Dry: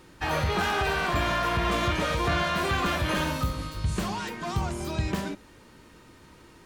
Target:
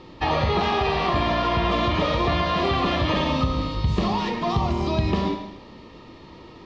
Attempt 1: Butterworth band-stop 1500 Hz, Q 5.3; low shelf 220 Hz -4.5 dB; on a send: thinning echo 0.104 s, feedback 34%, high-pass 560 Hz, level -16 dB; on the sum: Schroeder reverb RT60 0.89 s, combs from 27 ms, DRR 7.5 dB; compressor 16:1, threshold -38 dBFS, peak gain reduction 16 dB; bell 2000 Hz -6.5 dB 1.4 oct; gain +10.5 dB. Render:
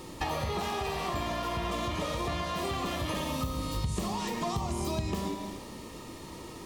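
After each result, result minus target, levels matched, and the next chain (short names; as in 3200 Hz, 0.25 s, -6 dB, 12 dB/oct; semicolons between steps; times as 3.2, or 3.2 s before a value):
8000 Hz band +16.5 dB; compressor: peak gain reduction +11 dB
Butterworth band-stop 1500 Hz, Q 5.3; low shelf 220 Hz -4.5 dB; on a send: thinning echo 0.104 s, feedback 34%, high-pass 560 Hz, level -16 dB; on the sum: Schroeder reverb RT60 0.89 s, combs from 27 ms, DRR 7.5 dB; compressor 16:1, threshold -38 dBFS, peak gain reduction 16 dB; inverse Chebyshev low-pass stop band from 10000 Hz, stop band 50 dB; bell 2000 Hz -6.5 dB 1.4 oct; gain +10.5 dB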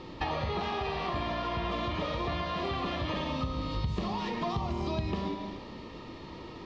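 compressor: peak gain reduction +11 dB
Butterworth band-stop 1500 Hz, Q 5.3; low shelf 220 Hz -4.5 dB; on a send: thinning echo 0.104 s, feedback 34%, high-pass 560 Hz, level -16 dB; on the sum: Schroeder reverb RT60 0.89 s, combs from 27 ms, DRR 7.5 dB; compressor 16:1, threshold -26.5 dBFS, peak gain reduction 5 dB; inverse Chebyshev low-pass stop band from 10000 Hz, stop band 50 dB; bell 2000 Hz -6.5 dB 1.4 oct; gain +10.5 dB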